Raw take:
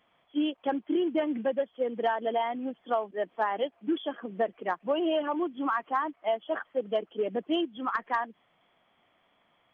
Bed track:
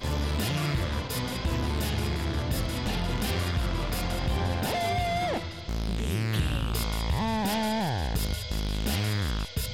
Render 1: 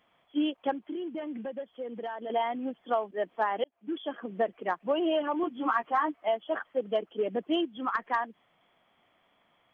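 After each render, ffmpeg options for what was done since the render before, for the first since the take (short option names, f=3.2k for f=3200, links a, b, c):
-filter_complex "[0:a]asettb=1/sr,asplit=3[a][b][c];[a]atrim=end=0.714[d];[b]atrim=start=0.71:end=2.3,asetpts=PTS-STARTPTS,afade=t=in:d=0.004:c=qsin,afade=t=out:st=1.586:d=0.004:c=qsin,acompressor=threshold=-37dB:ratio=2.5:attack=3.2:release=140:knee=1:detection=peak[e];[c]atrim=start=2.296[f];[d][e]acrossfade=d=0.004:c1=hsin:c2=qsin[g];[g][f]acrossfade=d=0.004:c1=qsin:c2=hsin,asettb=1/sr,asplit=3[h][i][j];[h]atrim=end=5.424[k];[i]atrim=start=5.42:end=6.28,asetpts=PTS-STARTPTS,afade=t=in:d=0.004:c=qsin,afade=t=out:st=0.856:d=0.004:c=qsin,asplit=2[l][m];[m]adelay=13,volume=-2.5dB[n];[l][n]amix=inputs=2:normalize=0,atrim=end_sample=37926[o];[j]atrim=start=6.276[p];[k][o]acrossfade=d=0.004:c1=hsin:c2=qsin[q];[q][p]acrossfade=d=0.004:c1=qsin:c2=hsin,asplit=2[r][s];[r]atrim=end=3.64,asetpts=PTS-STARTPTS,afade=t=out:st=3.636:d=0.004:c=hsin[t];[s]atrim=start=3.64,asetpts=PTS-STARTPTS,afade=t=in:d=0.53[u];[t][u]concat=n=2:v=0:a=1"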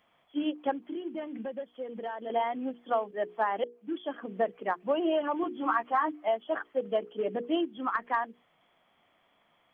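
-filter_complex "[0:a]acrossover=split=3100[a][b];[b]acompressor=threshold=-59dB:ratio=4:attack=1:release=60[c];[a][c]amix=inputs=2:normalize=0,bandreject=f=60:t=h:w=6,bandreject=f=120:t=h:w=6,bandreject=f=180:t=h:w=6,bandreject=f=240:t=h:w=6,bandreject=f=300:t=h:w=6,bandreject=f=360:t=h:w=6,bandreject=f=420:t=h:w=6,bandreject=f=480:t=h:w=6"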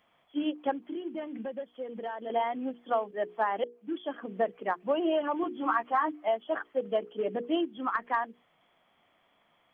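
-af anull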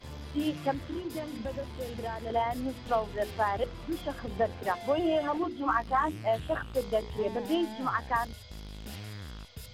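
-filter_complex "[1:a]volume=-14dB[a];[0:a][a]amix=inputs=2:normalize=0"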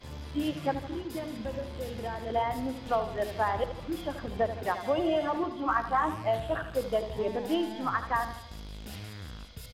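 -filter_complex "[0:a]asplit=2[a][b];[b]adelay=80,lowpass=f=4.8k:p=1,volume=-11dB,asplit=2[c][d];[d]adelay=80,lowpass=f=4.8k:p=1,volume=0.52,asplit=2[e][f];[f]adelay=80,lowpass=f=4.8k:p=1,volume=0.52,asplit=2[g][h];[h]adelay=80,lowpass=f=4.8k:p=1,volume=0.52,asplit=2[i][j];[j]adelay=80,lowpass=f=4.8k:p=1,volume=0.52,asplit=2[k][l];[l]adelay=80,lowpass=f=4.8k:p=1,volume=0.52[m];[a][c][e][g][i][k][m]amix=inputs=7:normalize=0"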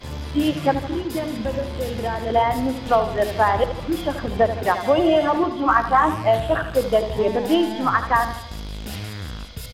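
-af "volume=10.5dB"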